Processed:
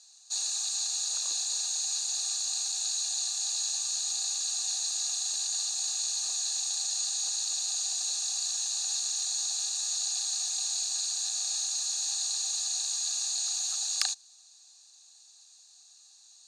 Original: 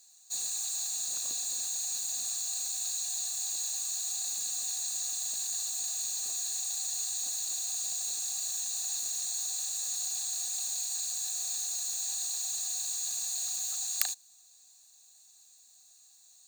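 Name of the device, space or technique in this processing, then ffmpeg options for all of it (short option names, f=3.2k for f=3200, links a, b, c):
phone speaker on a table: -af "highpass=f=390:w=0.5412,highpass=f=390:w=1.3066,equalizer=f=430:t=q:w=4:g=-9,equalizer=f=640:t=q:w=4:g=-9,equalizer=f=2k:t=q:w=4:g=-7,equalizer=f=5.1k:t=q:w=4:g=5,equalizer=f=7.5k:t=q:w=4:g=-7,lowpass=f=8.2k:w=0.5412,lowpass=f=8.2k:w=1.3066,volume=6dB"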